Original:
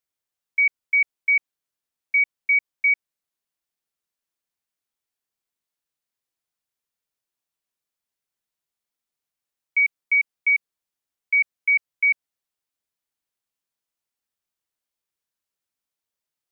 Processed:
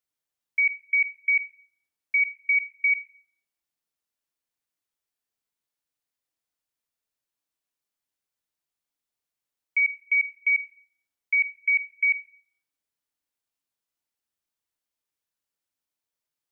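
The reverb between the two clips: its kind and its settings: FDN reverb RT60 0.57 s, low-frequency decay 1.45×, high-frequency decay 0.9×, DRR 10.5 dB; trim -2 dB

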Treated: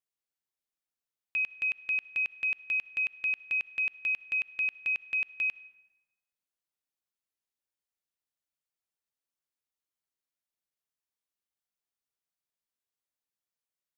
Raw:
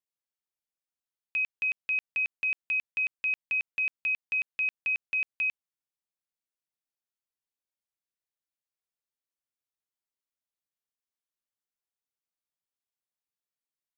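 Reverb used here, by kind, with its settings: algorithmic reverb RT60 1.2 s, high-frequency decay 0.6×, pre-delay 20 ms, DRR 18 dB; trim -1 dB

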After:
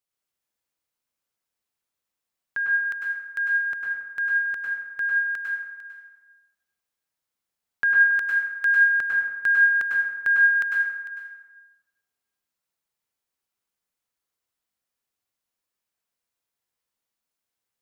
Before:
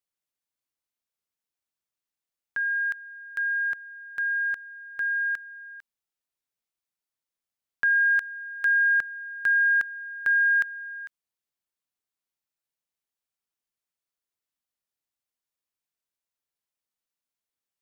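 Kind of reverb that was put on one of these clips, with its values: plate-style reverb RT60 1.2 s, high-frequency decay 0.55×, pre-delay 90 ms, DRR -3 dB; trim +1 dB

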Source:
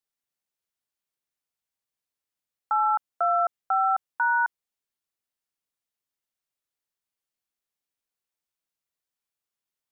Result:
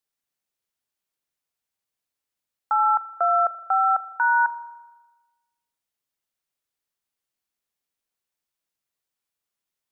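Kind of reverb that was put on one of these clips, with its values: spring tank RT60 1.2 s, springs 39 ms, chirp 50 ms, DRR 15 dB; trim +2.5 dB

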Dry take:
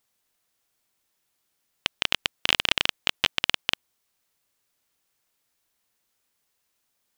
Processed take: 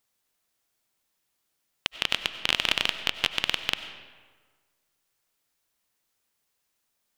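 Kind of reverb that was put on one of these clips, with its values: algorithmic reverb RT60 1.5 s, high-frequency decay 0.65×, pre-delay 55 ms, DRR 10 dB; trim -2 dB

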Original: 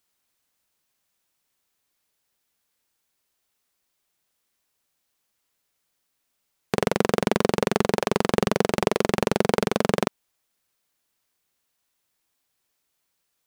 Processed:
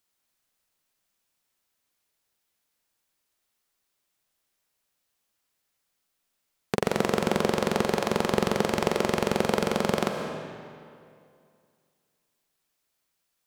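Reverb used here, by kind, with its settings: algorithmic reverb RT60 2.3 s, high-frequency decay 0.8×, pre-delay 85 ms, DRR 4.5 dB; trim -3 dB

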